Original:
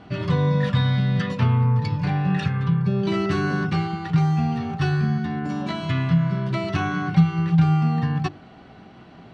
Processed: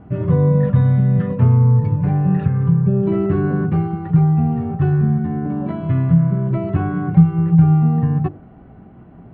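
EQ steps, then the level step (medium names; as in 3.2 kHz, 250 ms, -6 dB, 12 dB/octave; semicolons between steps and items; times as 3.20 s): Bessel low-pass 1.8 kHz, order 4; dynamic bell 480 Hz, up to +6 dB, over -40 dBFS, Q 1.4; tilt EQ -3 dB/octave; -2.5 dB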